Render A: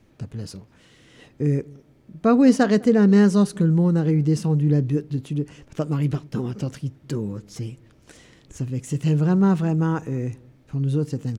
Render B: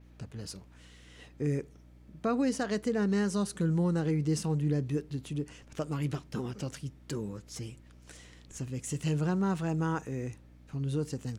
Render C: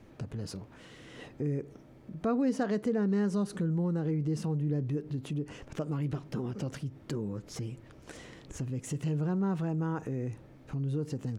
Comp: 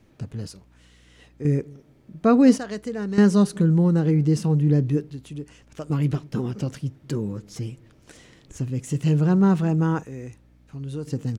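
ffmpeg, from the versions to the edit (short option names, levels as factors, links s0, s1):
-filter_complex "[1:a]asplit=4[s0][s1][s2][s3];[0:a]asplit=5[s4][s5][s6][s7][s8];[s4]atrim=end=0.482[s9];[s0]atrim=start=0.478:end=1.452[s10];[s5]atrim=start=1.448:end=2.582[s11];[s1]atrim=start=2.578:end=3.182[s12];[s6]atrim=start=3.178:end=5.102[s13];[s2]atrim=start=5.098:end=5.902[s14];[s7]atrim=start=5.898:end=10.032[s15];[s3]atrim=start=10.028:end=11.072[s16];[s8]atrim=start=11.068[s17];[s9][s10]acrossfade=d=0.004:c1=hsin:c2=hsin[s18];[s18][s11]acrossfade=d=0.004:c1=hsin:c2=hsin[s19];[s19][s12]acrossfade=d=0.004:c1=hsin:c2=hsin[s20];[s20][s13]acrossfade=d=0.004:c1=hsin:c2=hsin[s21];[s21][s14]acrossfade=d=0.004:c1=hsin:c2=hsin[s22];[s22][s15]acrossfade=d=0.004:c1=hsin:c2=hsin[s23];[s23][s16]acrossfade=d=0.004:c1=hsin:c2=hsin[s24];[s24][s17]acrossfade=d=0.004:c1=hsin:c2=hsin"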